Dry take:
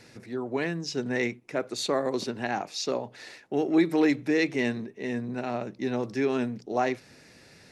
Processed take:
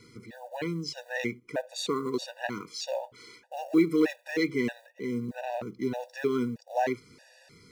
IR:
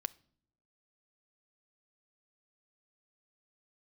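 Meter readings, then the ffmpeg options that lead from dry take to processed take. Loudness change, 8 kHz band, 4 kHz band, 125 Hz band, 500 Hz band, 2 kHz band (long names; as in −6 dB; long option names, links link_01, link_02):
−2.5 dB, −3.5 dB, −3.0 dB, −2.5 dB, −3.0 dB, −3.5 dB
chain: -af "acrusher=bits=8:mode=log:mix=0:aa=0.000001,afftfilt=real='re*gt(sin(2*PI*1.6*pts/sr)*(1-2*mod(floor(b*sr/1024/490),2)),0)':imag='im*gt(sin(2*PI*1.6*pts/sr)*(1-2*mod(floor(b*sr/1024/490),2)),0)':win_size=1024:overlap=0.75"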